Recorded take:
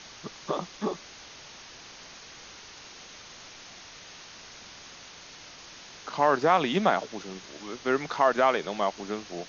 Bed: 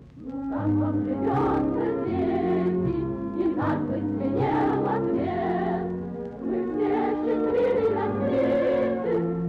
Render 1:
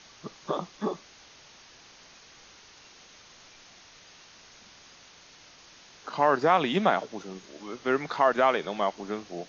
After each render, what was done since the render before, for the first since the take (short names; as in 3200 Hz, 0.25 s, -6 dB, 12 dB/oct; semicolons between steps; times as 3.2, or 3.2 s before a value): noise print and reduce 6 dB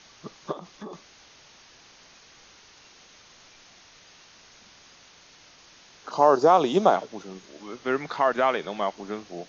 0.52–0.93 compressor, threshold -35 dBFS; 6.11–6.96 EQ curve 240 Hz 0 dB, 370 Hz +7 dB, 800 Hz +5 dB, 1200 Hz +2 dB, 1900 Hz -11 dB, 5900 Hz +8 dB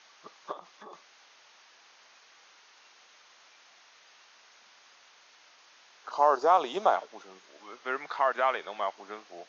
HPF 940 Hz 12 dB/oct; tilt -3 dB/oct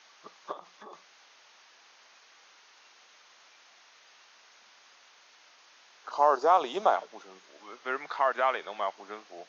HPF 97 Hz; notches 60/120/180 Hz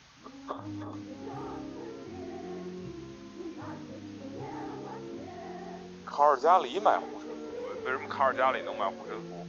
add bed -16.5 dB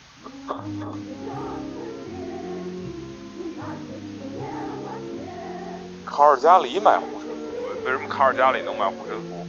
gain +8 dB